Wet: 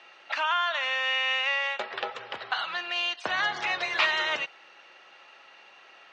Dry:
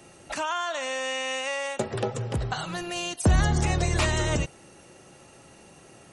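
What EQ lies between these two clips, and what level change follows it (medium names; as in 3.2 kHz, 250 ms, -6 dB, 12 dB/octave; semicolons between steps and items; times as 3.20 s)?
high-pass 1.2 kHz 12 dB/octave; low-pass 4 kHz 24 dB/octave; distance through air 55 m; +7.0 dB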